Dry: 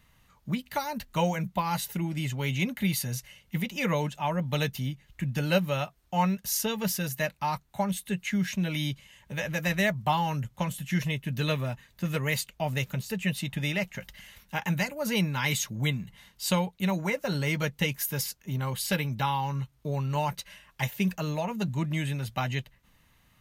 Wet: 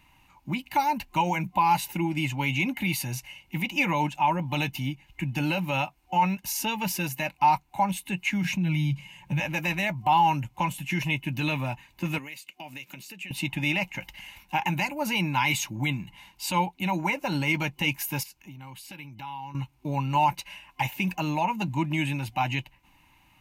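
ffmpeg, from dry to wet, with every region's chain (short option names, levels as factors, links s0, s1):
-filter_complex "[0:a]asettb=1/sr,asplit=3[s0][s1][s2];[s0]atrim=end=8.444[s3];[s1]atrim=start=8.44:end=9.4,asetpts=PTS-STARTPTS,afade=t=in:d=0.004:c=qsin,afade=t=out:st=0.956:d=0.004:c=qsin,equalizer=f=150:t=o:w=0.8:g=14,aecho=1:1:5.6:0.34,atrim=end_sample=42336[s4];[s2]atrim=start=9.396[s5];[s3][s4]acrossfade=d=0.004:c1=hsin:c2=qsin[s6];[s6][s5]acrossfade=d=0.004:c1=qsin:c2=hsin,asettb=1/sr,asplit=3[s7][s8][s9];[s7]atrim=end=12.184[s10];[s8]atrim=start=12.18:end=13.31,asetpts=PTS-STARTPTS,afade=t=in:d=0.004:c=qsin,afade=t=out:st=1.126:d=0.004:c=qsin,highpass=280,equalizer=f=840:w=1.4:g=-11,acompressor=threshold=0.00891:ratio=8:attack=3.2:release=140:knee=1:detection=peak[s11];[s9]atrim=start=13.306[s12];[s10][s11]acrossfade=d=0.004:c1=hsin:c2=qsin[s13];[s13][s12]acrossfade=d=0.004:c1=qsin:c2=hsin,asettb=1/sr,asplit=3[s14][s15][s16];[s14]atrim=end=18.234[s17];[s15]atrim=start=18.23:end=19.55,asetpts=PTS-STARTPTS,afade=t=in:d=0.004:c=qsin,afade=t=out:st=1.316:d=0.004:c=qsin,equalizer=f=730:t=o:w=0.74:g=-4.5,acompressor=threshold=0.00631:ratio=5:attack=3.2:release=140:knee=1:detection=peak,bandreject=f=500:w=12[s18];[s16]atrim=start=19.546[s19];[s17][s18]acrossfade=d=0.004:c1=hsin:c2=qsin[s20];[s20][s19]acrossfade=d=0.004:c1=qsin:c2=hsin,alimiter=limit=0.0891:level=0:latency=1:release=17,superequalizer=6b=2.51:7b=0.501:9b=3.55:12b=2.82"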